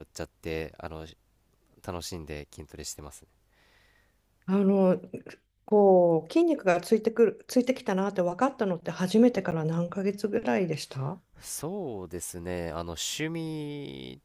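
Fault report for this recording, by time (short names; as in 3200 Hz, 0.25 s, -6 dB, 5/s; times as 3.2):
9.51–9.52 gap 9 ms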